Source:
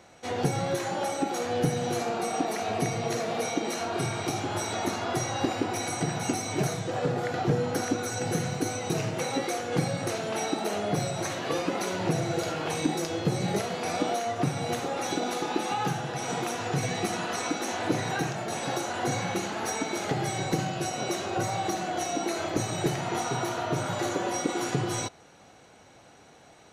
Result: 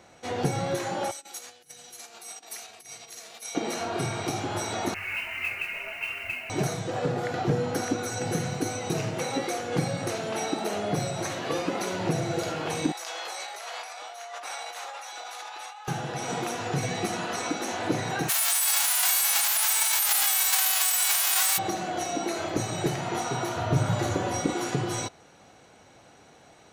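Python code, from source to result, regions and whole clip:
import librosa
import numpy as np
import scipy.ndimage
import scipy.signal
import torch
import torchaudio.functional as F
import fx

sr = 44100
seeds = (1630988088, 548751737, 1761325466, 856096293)

y = fx.chain(x, sr, fx.over_compress(threshold_db=-31.0, ratio=-0.5),
    fx.pre_emphasis(coefficient=0.97), at=(1.11, 3.55))
y = fx.chain(y, sr, fx.freq_invert(carrier_hz=2900),
    fx.mod_noise(seeds[0], snr_db=20),
    fx.detune_double(cents=14), at=(4.94, 6.5))
y = fx.chain(y, sr, fx.highpass(hz=740.0, slope=24),
    fx.over_compress(threshold_db=-39.0, ratio=-1.0), at=(12.92, 15.88))
y = fx.envelope_flatten(y, sr, power=0.1, at=(18.28, 21.57), fade=0.02)
y = fx.highpass(y, sr, hz=700.0, slope=24, at=(18.28, 21.57), fade=0.02)
y = fx.env_flatten(y, sr, amount_pct=70, at=(18.28, 21.57), fade=0.02)
y = fx.chain(y, sr, fx.peak_eq(hz=80.0, db=14.5, octaves=2.1),
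    fx.hum_notches(base_hz=50, count=10), at=(23.56, 24.54))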